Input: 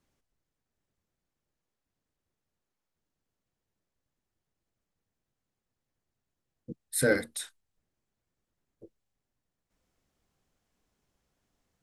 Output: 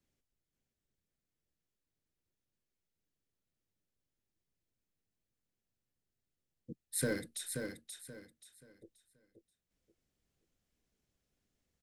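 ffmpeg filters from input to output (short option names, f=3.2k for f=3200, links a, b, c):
-filter_complex "[0:a]acrossover=split=330|3000[a][b][c];[b]acompressor=threshold=-32dB:ratio=2.5[d];[a][d][c]amix=inputs=3:normalize=0,acrossover=split=730|1300[e][f][g];[f]acrusher=bits=5:dc=4:mix=0:aa=0.000001[h];[e][h][g]amix=inputs=3:normalize=0,aecho=1:1:530|1060|1590|2120:0.501|0.14|0.0393|0.011,volume=-5.5dB"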